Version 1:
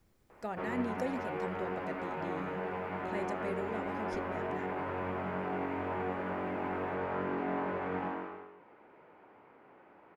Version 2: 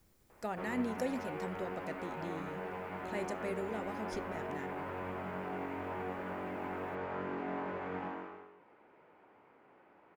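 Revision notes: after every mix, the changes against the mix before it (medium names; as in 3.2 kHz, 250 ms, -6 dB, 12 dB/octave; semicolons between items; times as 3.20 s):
background -4.5 dB; master: add treble shelf 5.2 kHz +8.5 dB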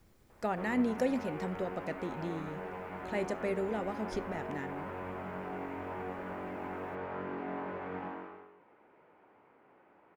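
speech +5.5 dB; master: add treble shelf 5.2 kHz -8.5 dB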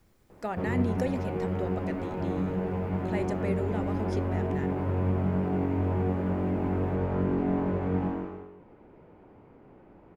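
background: remove band-pass filter 1.7 kHz, Q 0.8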